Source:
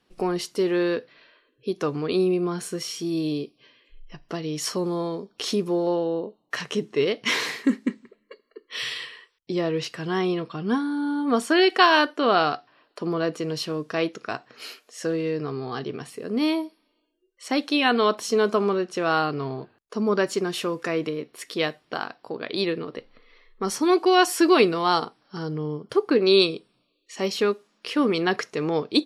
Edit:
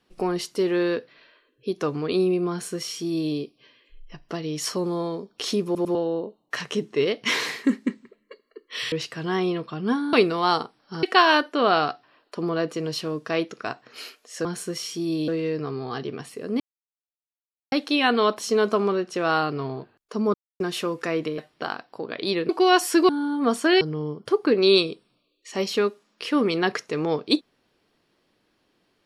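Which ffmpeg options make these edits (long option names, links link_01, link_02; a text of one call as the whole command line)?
ffmpeg -i in.wav -filter_complex "[0:a]asplit=17[link_01][link_02][link_03][link_04][link_05][link_06][link_07][link_08][link_09][link_10][link_11][link_12][link_13][link_14][link_15][link_16][link_17];[link_01]atrim=end=5.752[link_18];[link_02]atrim=start=5.648:end=5.752[link_19];[link_03]atrim=start=5.648:end=5.752[link_20];[link_04]atrim=start=5.948:end=8.922[link_21];[link_05]atrim=start=9.738:end=10.952[link_22];[link_06]atrim=start=24.548:end=25.452[link_23];[link_07]atrim=start=11.668:end=15.092[link_24];[link_08]atrim=start=2.498:end=3.332[link_25];[link_09]atrim=start=15.088:end=16.41,asetpts=PTS-STARTPTS,afade=type=out:start_time=1.318:duration=0.004:curve=hsin[link_26];[link_10]atrim=start=16.41:end=17.53,asetpts=PTS-STARTPTS,volume=0[link_27];[link_11]atrim=start=17.53:end=20.15,asetpts=PTS-STARTPTS,afade=type=in:duration=0.004:curve=hsin,afade=type=out:start_time=2.616:duration=0.004:curve=hsin[link_28];[link_12]atrim=start=20.15:end=20.41,asetpts=PTS-STARTPTS,volume=0[link_29];[link_13]atrim=start=20.41:end=21.192,asetpts=PTS-STARTPTS,afade=type=in:duration=0.004:curve=hsin[link_30];[link_14]atrim=start=21.688:end=22.802[link_31];[link_15]atrim=start=23.948:end=24.552[link_32];[link_16]atrim=start=10.948:end=11.672[link_33];[link_17]atrim=start=25.448[link_34];[link_18][link_19]acrossfade=duration=0.004:curve1=hsin:curve2=hsin[link_35];[link_35][link_20]acrossfade=duration=0.004:curve1=hsin:curve2=hsin[link_36];[link_36][link_21]acrossfade=duration=0.004:curve1=hsin:curve2=hsin[link_37];[link_37][link_22]acrossfade=duration=0.004:curve1=hsin:curve2=hsin[link_38];[link_38][link_23]acrossfade=duration=0.004:curve1=hsin:curve2=hsin[link_39];[link_39][link_24]acrossfade=duration=0.004:curve1=hsin:curve2=hsin[link_40];[link_40][link_25]acrossfade=duration=0.004:curve1=hsin:curve2=hsin[link_41];[link_26][link_27][link_28][link_29][link_30]concat=n=5:v=0:a=1[link_42];[link_41][link_42]acrossfade=duration=0.004:curve1=hsin:curve2=hsin[link_43];[link_43][link_31]acrossfade=duration=0.004:curve1=hsin:curve2=hsin[link_44];[link_44][link_32]acrossfade=duration=0.004:curve1=hsin:curve2=hsin[link_45];[link_45][link_33]acrossfade=duration=0.004:curve1=hsin:curve2=hsin[link_46];[link_46][link_34]acrossfade=duration=0.004:curve1=hsin:curve2=hsin" out.wav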